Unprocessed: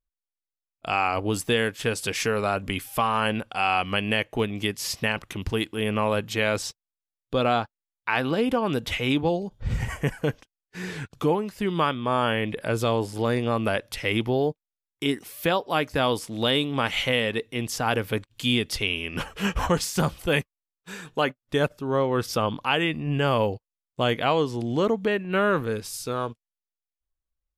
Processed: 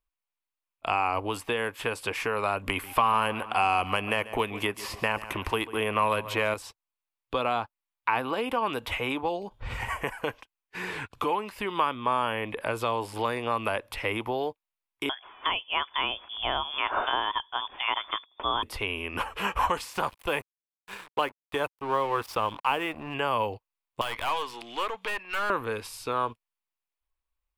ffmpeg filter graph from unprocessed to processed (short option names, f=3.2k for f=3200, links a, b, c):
-filter_complex "[0:a]asettb=1/sr,asplit=3[a][b][c];[a]atrim=end=2.674[d];[b]atrim=start=2.67:end=6.54,asetpts=PTS-STARTPTS,afade=t=in:d=0.004:c=qsin,afade=t=out:st=3.866:d=0.004:c=qsin,bandreject=f=840:w=22,acontrast=77,aecho=1:1:140|280|420:0.112|0.0426|0.0162,atrim=end_sample=170667[e];[c]atrim=start=6.536[f];[d][e]acrossfade=d=0.004:c1=hsin:c2=qsin[g];[g][f]acrossfade=d=0.004:c1=qsin:c2=hsin,asettb=1/sr,asplit=3[h][i][j];[h]atrim=end=15.094[k];[i]atrim=start=15.09:end=18.63,asetpts=PTS-STARTPTS,afade=t=in:d=0.004:c=qsin,afade=t=out:st=3.536:d=0.004:c=qsin,bandreject=f=80.77:t=h:w=4,bandreject=f=161.54:t=h:w=4,bandreject=f=242.31:t=h:w=4,lowpass=f=3.1k:t=q:w=0.5098,lowpass=f=3.1k:t=q:w=0.6013,lowpass=f=3.1k:t=q:w=0.9,lowpass=f=3.1k:t=q:w=2.563,afreqshift=-3600[l];[j]atrim=start=18.626[m];[k][l]acrossfade=d=0.004:c1=hsin:c2=qsin[n];[n][m]acrossfade=d=0.004:c1=qsin:c2=hsin,asettb=1/sr,asplit=3[o][p][q];[o]atrim=end=19.934[r];[p]atrim=start=19.93:end=23.14,asetpts=PTS-STARTPTS,afade=t=in:d=0.004:c=qsin,afade=t=out:st=3.206:d=0.004:c=qsin,bandreject=f=250:w=8,aeval=exprs='sgn(val(0))*max(abs(val(0))-0.01,0)':c=same[s];[q]atrim=start=23.136[t];[r][s]acrossfade=d=0.004:c1=hsin:c2=qsin[u];[u][t]acrossfade=d=0.004:c1=qsin:c2=hsin,asettb=1/sr,asplit=3[v][w][x];[v]atrim=end=24.014[y];[w]atrim=start=24.01:end=25.5,asetpts=PTS-STARTPTS,afade=t=in:d=0.004:c=qsin,afade=t=out:st=1.486:d=0.004:c=qsin,highpass=f=1.2k:p=1,equalizer=f=3.2k:w=0.43:g=9.5,aeval=exprs='(tanh(20*val(0)+0.7)-tanh(0.7))/20':c=same[z];[x]atrim=start=25.496[aa];[y][z]acrossfade=d=0.004:c1=hsin:c2=qsin[ab];[ab][aa]acrossfade=d=0.004:c1=qsin:c2=hsin,acrossover=split=470|1500|6700[ac][ad][ae][af];[ac]acompressor=threshold=-34dB:ratio=4[ag];[ad]acompressor=threshold=-32dB:ratio=4[ah];[ae]acompressor=threshold=-41dB:ratio=4[ai];[af]acompressor=threshold=-45dB:ratio=4[aj];[ag][ah][ai][aj]amix=inputs=4:normalize=0,equalizer=f=160:t=o:w=0.67:g=-10,equalizer=f=1k:t=o:w=0.67:g=10,equalizer=f=2.5k:t=o:w=0.67:g=7,equalizer=f=6.3k:t=o:w=0.67:g=-6"